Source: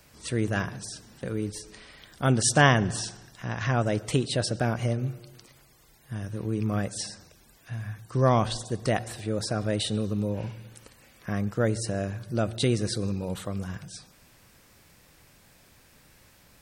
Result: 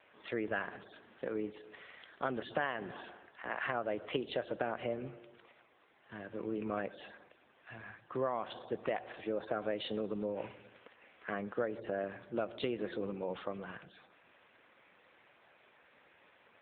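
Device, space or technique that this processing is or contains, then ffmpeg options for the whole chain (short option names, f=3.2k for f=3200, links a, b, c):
voicemail: -filter_complex "[0:a]asettb=1/sr,asplit=3[a][b][c];[a]atrim=end=2.944[d];[b]atrim=start=2.94:end=3.65,asetpts=PTS-STARTPTS,afade=t=in:d=0.004:c=qsin,afade=t=out:st=0.706:d=0.004:c=qsin,acrossover=split=160 3900:gain=0.112 1 0.0891[e][f][g];[e][f][g]amix=inputs=3:normalize=0[h];[c]atrim=start=3.646[i];[d][h]acrossfade=d=0.004:c1=hsin:c2=qsin[j];[j][i]acrossfade=d=0.004:c1=qsin:c2=hsin,highpass=390,lowpass=3.2k,acompressor=threshold=-30dB:ratio=10" -ar 8000 -c:a libopencore_amrnb -b:a 7950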